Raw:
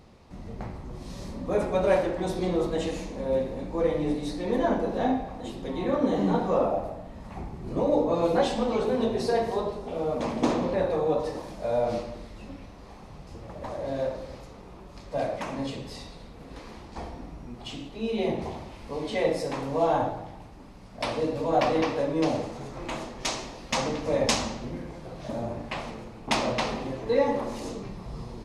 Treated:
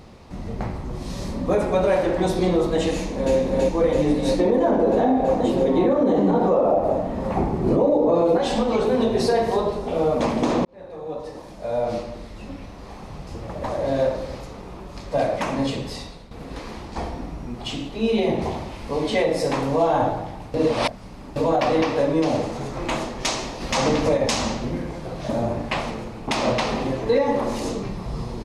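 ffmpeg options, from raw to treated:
-filter_complex "[0:a]asplit=2[s0][s1];[s1]afade=t=in:st=2.93:d=0.01,afade=t=out:st=3.35:d=0.01,aecho=0:1:330|660|990|1320|1650|1980|2310|2640|2970|3300|3630|3960:0.891251|0.713001|0.570401|0.45632|0.365056|0.292045|0.233636|0.186909|0.149527|0.119622|0.0956973|0.0765579[s2];[s0][s2]amix=inputs=2:normalize=0,asettb=1/sr,asplit=3[s3][s4][s5];[s3]atrim=end=4.394[s6];[s4]atrim=start=4.39:end=8.38,asetpts=PTS-STARTPTS,afade=t=in:d=0.004:c=qsin,afade=t=out:st=3.986:d=0.004:c=qsin,equalizer=f=430:w=0.4:g=11[s7];[s5]atrim=start=8.376[s8];[s6][s7]acrossfade=d=0.004:c1=hsin:c2=qsin[s9];[s9][s8]acrossfade=d=0.004:c1=qsin:c2=hsin,asplit=3[s10][s11][s12];[s10]afade=t=out:st=23.6:d=0.02[s13];[s11]acontrast=28,afade=t=in:st=23.6:d=0.02,afade=t=out:st=24.16:d=0.02[s14];[s12]afade=t=in:st=24.16:d=0.02[s15];[s13][s14][s15]amix=inputs=3:normalize=0,asplit=5[s16][s17][s18][s19][s20];[s16]atrim=end=10.65,asetpts=PTS-STARTPTS,afade=t=out:st=10.646:d=0.004:c=hsin[s21];[s17]atrim=start=10.65:end=16.31,asetpts=PTS-STARTPTS,afade=t=in:d=2.48,afade=t=out:st=5.09:d=0.57:c=qsin:silence=0.281838[s22];[s18]atrim=start=16.31:end=20.542,asetpts=PTS-STARTPTS,afade=t=in:d=0.004:c=hsin:silence=0.281838[s23];[s19]atrim=start=20.538:end=21.362,asetpts=PTS-STARTPTS,areverse[s24];[s20]atrim=start=21.358[s25];[s21][s22][s23]concat=n=3:v=0:a=1[s26];[s26][s24]acrossfade=d=0.004:c1=hsin:c2=hsin[s27];[s27][s25]acrossfade=d=0.004:c1=hsin:c2=hsin,alimiter=limit=0.112:level=0:latency=1:release=204,volume=2.66"

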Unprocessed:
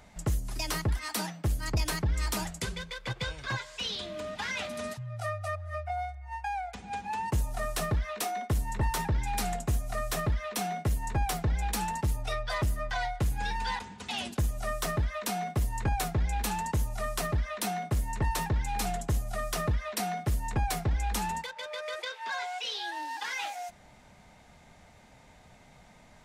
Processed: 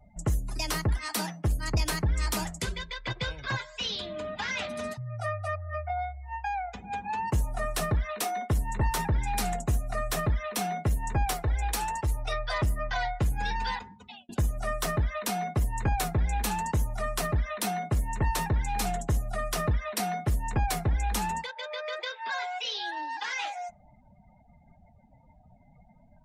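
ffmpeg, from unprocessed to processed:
-filter_complex "[0:a]asettb=1/sr,asplit=3[s0][s1][s2];[s0]atrim=end=2.684[s3];[s1]atrim=start=2.68:end=3.21,asetpts=PTS-STARTPTS,afade=t=in:d=0.004:c=qsin,afade=t=out:st=0.526:d=0.004:c=qsin,aecho=1:1:3:0.44,atrim=end_sample=23373[s4];[s2]atrim=start=3.206[s5];[s3][s4]acrossfade=d=0.004:c1=hsin:c2=qsin[s6];[s6][s5]acrossfade=d=0.004:c1=qsin:c2=hsin,asettb=1/sr,asplit=3[s7][s8][s9];[s7]atrim=end=11.334[s10];[s8]atrim=start=11.33:end=12.56,asetpts=PTS-STARTPTS,afade=t=in:d=0.004:c=qsin,afade=t=out:st=1.226:d=0.004:c=qsin,equalizer=f=190:t=o:w=0.77:g=-13[s11];[s9]atrim=start=12.556[s12];[s10][s11]acrossfade=d=0.004:c1=hsin:c2=qsin[s13];[s13][s12]acrossfade=d=0.004:c1=qsin:c2=hsin,asplit=2[s14][s15];[s14]atrim=end=14.29,asetpts=PTS-STARTPTS,afade=t=out:st=13.63:d=0.66[s16];[s15]atrim=start=14.29,asetpts=PTS-STARTPTS,afade=t=in:d=0.004:c=hsin[s17];[s16][s17]concat=n=2:v=0:a=1,afftdn=nr=33:nf=-50,volume=1.26"

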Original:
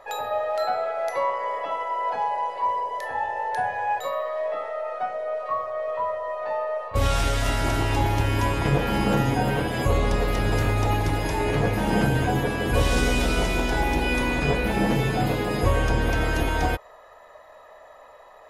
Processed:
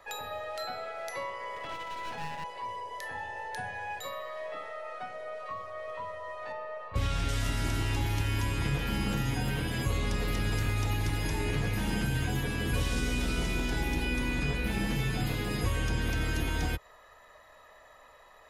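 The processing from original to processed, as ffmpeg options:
-filter_complex "[0:a]asettb=1/sr,asplit=3[s0][s1][s2];[s0]atrim=end=1.564[s3];[s1]atrim=start=1.56:end=2.44,asetpts=PTS-STARTPTS,afade=t=in:d=0.004:c=qsin,afade=t=out:st=0.876:d=0.004:c=qsin,aeval=exprs='clip(val(0),-1,0.0473)':c=same[s4];[s2]atrim=start=2.436[s5];[s3][s4]acrossfade=d=0.004:c1=hsin:c2=qsin[s6];[s6][s5]acrossfade=d=0.004:c1=qsin:c2=hsin,asettb=1/sr,asplit=3[s7][s8][s9];[s7]atrim=end=6.524[s10];[s8]atrim=start=6.52:end=7.29,asetpts=PTS-STARTPTS,afade=t=in:d=0.004:c=qsin,afade=t=out:st=0.766:d=0.004:c=qsin,lowpass=f=2500:p=1[s11];[s9]atrim=start=7.286[s12];[s10][s11]acrossfade=d=0.004:c1=hsin:c2=qsin[s13];[s13][s12]acrossfade=d=0.004:c1=qsin:c2=hsin,equalizer=f=650:w=0.74:g=-11,acrossover=split=88|580|2000[s14][s15][s16][s17];[s14]acompressor=threshold=0.0251:ratio=4[s18];[s15]acompressor=threshold=0.0251:ratio=4[s19];[s16]acompressor=threshold=0.00891:ratio=4[s20];[s17]acompressor=threshold=0.0112:ratio=4[s21];[s18][s19][s20][s21]amix=inputs=4:normalize=0"

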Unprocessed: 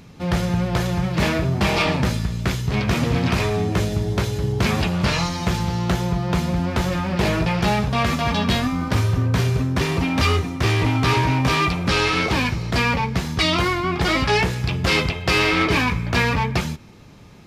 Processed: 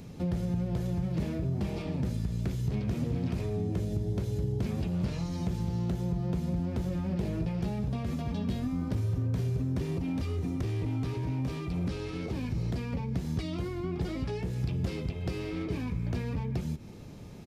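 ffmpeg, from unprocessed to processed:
-filter_complex "[0:a]asettb=1/sr,asplit=3[s0][s1][s2];[s0]atrim=end=9.984[s3];[s1]atrim=start=9.98:end=12.93,asetpts=PTS-STARTPTS,afade=t=in:d=0.004:c=qsin,afade=t=out:st=2.946:d=0.004:c=qsin,acompressor=threshold=0.1:ratio=6:attack=3.2:release=140:knee=1:detection=peak[s4];[s2]atrim=start=12.926[s5];[s3][s4]acrossfade=d=0.004:c1=hsin:c2=qsin[s6];[s6][s5]acrossfade=d=0.004:c1=qsin:c2=hsin,acompressor=threshold=0.0447:ratio=6,firequalizer=gain_entry='entry(510,0);entry(1100,-8);entry(9100,-1)':delay=0.05:min_phase=1,acrossover=split=420[s7][s8];[s8]acompressor=threshold=0.00282:ratio=2[s9];[s7][s9]amix=inputs=2:normalize=0"

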